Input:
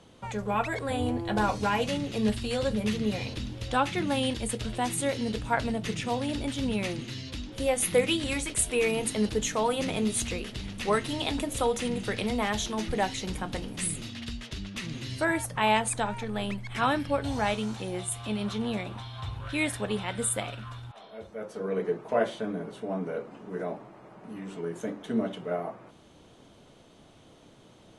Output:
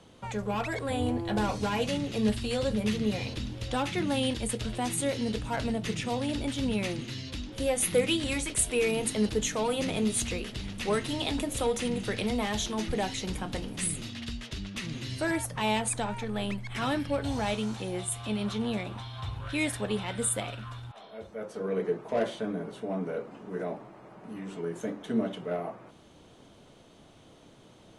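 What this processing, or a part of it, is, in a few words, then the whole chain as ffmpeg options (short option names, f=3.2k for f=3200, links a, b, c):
one-band saturation: -filter_complex "[0:a]acrossover=split=580|2500[a][b][c];[b]asoftclip=type=tanh:threshold=-32.5dB[d];[a][d][c]amix=inputs=3:normalize=0"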